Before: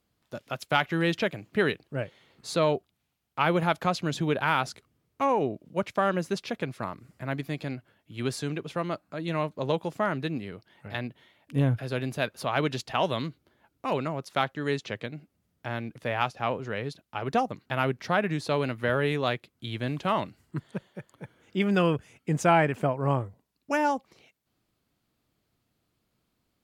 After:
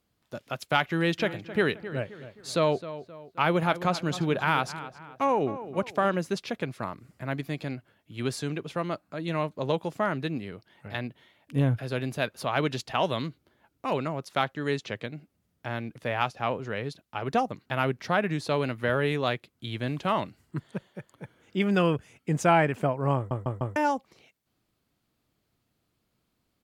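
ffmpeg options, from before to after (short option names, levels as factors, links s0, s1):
-filter_complex "[0:a]asplit=3[s0][s1][s2];[s0]afade=t=out:st=1.18:d=0.02[s3];[s1]asplit=2[s4][s5];[s5]adelay=263,lowpass=f=3000:p=1,volume=0.211,asplit=2[s6][s7];[s7]adelay=263,lowpass=f=3000:p=1,volume=0.42,asplit=2[s8][s9];[s9]adelay=263,lowpass=f=3000:p=1,volume=0.42,asplit=2[s10][s11];[s11]adelay=263,lowpass=f=3000:p=1,volume=0.42[s12];[s4][s6][s8][s10][s12]amix=inputs=5:normalize=0,afade=t=in:st=1.18:d=0.02,afade=t=out:st=6.14:d=0.02[s13];[s2]afade=t=in:st=6.14:d=0.02[s14];[s3][s13][s14]amix=inputs=3:normalize=0,asplit=5[s15][s16][s17][s18][s19];[s15]atrim=end=23.312[s20];[s16]atrim=start=23.158:end=23.312[s21];[s17]atrim=start=23.158:end=23.312[s22];[s18]atrim=start=23.158:end=23.312[s23];[s19]atrim=start=23.758[s24];[s20][s21]acrossfade=d=0.004:c1=hsin:c2=hsin[s25];[s25][s22]acrossfade=d=0.004:c1=hsin:c2=hsin[s26];[s26][s23]acrossfade=d=0.004:c1=hsin:c2=hsin[s27];[s27][s24]acrossfade=d=0.004:c1=hsin:c2=hsin"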